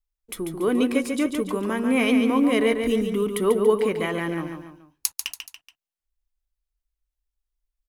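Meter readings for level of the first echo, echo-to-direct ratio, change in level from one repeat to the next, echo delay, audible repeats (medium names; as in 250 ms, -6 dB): -6.5 dB, -5.5 dB, -7.0 dB, 142 ms, 3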